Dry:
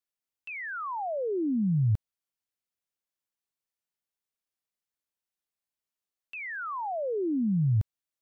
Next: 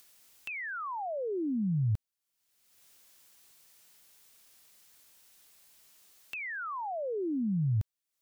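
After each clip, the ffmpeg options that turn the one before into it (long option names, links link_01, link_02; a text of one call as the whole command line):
ffmpeg -i in.wav -af "highshelf=frequency=2400:gain=7,acompressor=mode=upward:threshold=-34dB:ratio=2.5,volume=-4dB" out.wav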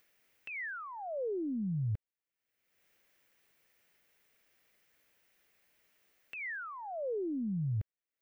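ffmpeg -i in.wav -af "aeval=exprs='0.0708*(cos(1*acos(clip(val(0)/0.0708,-1,1)))-cos(1*PI/2))+0.000501*(cos(4*acos(clip(val(0)/0.0708,-1,1)))-cos(4*PI/2))':channel_layout=same,equalizer=frequency=500:width_type=o:width=1:gain=5,equalizer=frequency=1000:width_type=o:width=1:gain=-5,equalizer=frequency=2000:width_type=o:width=1:gain=7,equalizer=frequency=4000:width_type=o:width=1:gain=-7,equalizer=frequency=8000:width_type=o:width=1:gain=-9,equalizer=frequency=16000:width_type=o:width=1:gain=-9,volume=-5dB" out.wav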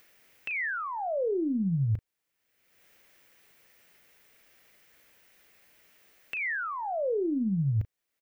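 ffmpeg -i in.wav -filter_complex "[0:a]asplit=2[link_01][link_02];[link_02]acompressor=threshold=-42dB:ratio=6,volume=1dB[link_03];[link_01][link_03]amix=inputs=2:normalize=0,asplit=2[link_04][link_05];[link_05]adelay=36,volume=-13dB[link_06];[link_04][link_06]amix=inputs=2:normalize=0,volume=3.5dB" out.wav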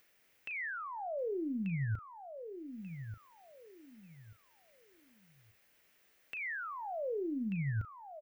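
ffmpeg -i in.wav -af "aecho=1:1:1187|2374|3561:0.335|0.0904|0.0244,volume=-8dB" out.wav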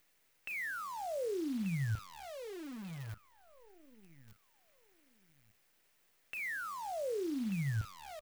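ffmpeg -i in.wav -af "acrusher=bits=9:dc=4:mix=0:aa=0.000001" out.wav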